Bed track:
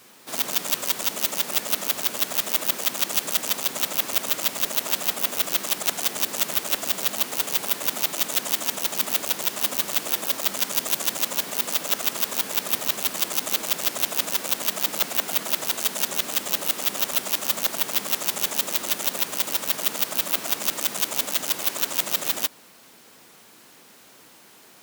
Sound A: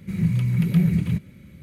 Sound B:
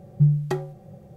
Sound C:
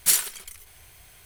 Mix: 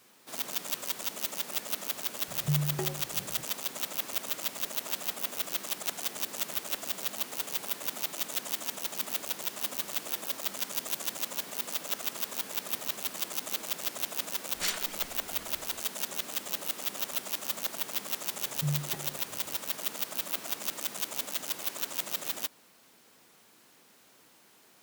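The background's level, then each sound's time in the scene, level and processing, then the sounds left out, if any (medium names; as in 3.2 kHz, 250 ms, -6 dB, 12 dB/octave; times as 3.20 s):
bed track -9.5 dB
2.28 s: add B -4 dB + compression 2:1, threshold -27 dBFS
14.55 s: add C -2.5 dB + distance through air 120 m
18.42 s: add B -11 dB + endless flanger 10.7 ms -2.9 Hz
not used: A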